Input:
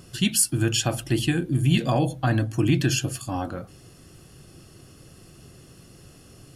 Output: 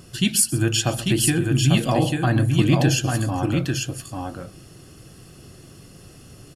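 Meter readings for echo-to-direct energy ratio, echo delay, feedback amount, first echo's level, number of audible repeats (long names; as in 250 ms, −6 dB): −4.0 dB, 129 ms, repeats not evenly spaced, −17.0 dB, 2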